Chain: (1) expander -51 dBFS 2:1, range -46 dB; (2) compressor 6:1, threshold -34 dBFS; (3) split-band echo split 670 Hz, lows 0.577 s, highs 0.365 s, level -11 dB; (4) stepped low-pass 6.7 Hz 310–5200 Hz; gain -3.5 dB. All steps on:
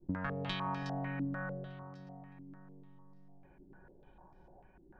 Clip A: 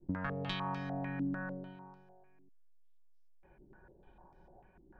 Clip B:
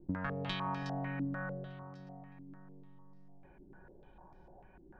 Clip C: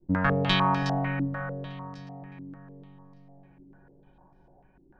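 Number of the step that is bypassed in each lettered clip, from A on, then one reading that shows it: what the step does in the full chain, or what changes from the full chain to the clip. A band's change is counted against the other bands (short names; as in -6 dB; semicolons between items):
3, momentary loudness spread change -4 LU; 1, momentary loudness spread change +4 LU; 2, mean gain reduction 4.0 dB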